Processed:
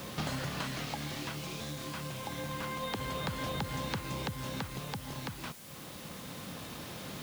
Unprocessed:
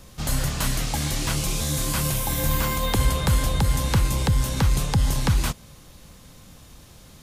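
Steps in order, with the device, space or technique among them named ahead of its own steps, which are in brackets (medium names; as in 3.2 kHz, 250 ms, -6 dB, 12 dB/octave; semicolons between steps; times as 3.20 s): medium wave at night (band-pass 160–4000 Hz; compression 10:1, threshold -42 dBFS, peak gain reduction 22 dB; tremolo 0.28 Hz, depth 43%; whistle 10 kHz -72 dBFS; white noise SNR 13 dB); trim +9 dB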